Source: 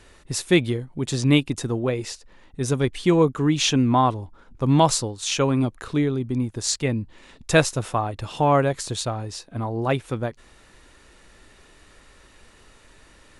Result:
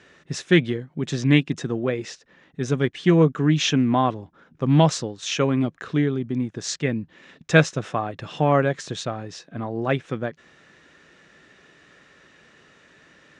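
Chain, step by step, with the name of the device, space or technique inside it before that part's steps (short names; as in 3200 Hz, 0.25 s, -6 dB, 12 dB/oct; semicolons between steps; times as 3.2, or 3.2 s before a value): full-range speaker at full volume (Doppler distortion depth 0.11 ms; speaker cabinet 150–6200 Hz, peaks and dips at 160 Hz +8 dB, 920 Hz -6 dB, 1700 Hz +5 dB, 4500 Hz -6 dB)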